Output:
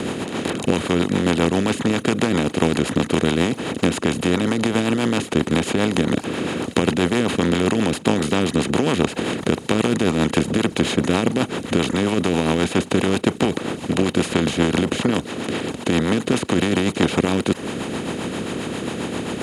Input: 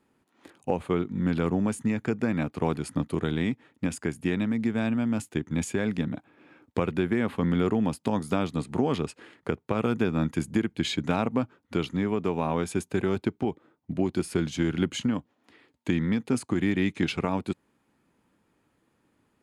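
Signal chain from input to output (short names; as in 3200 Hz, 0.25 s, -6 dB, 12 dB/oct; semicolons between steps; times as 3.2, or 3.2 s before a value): per-bin compression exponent 0.2; reverb removal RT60 0.51 s; rotary speaker horn 7.5 Hz; gain +2.5 dB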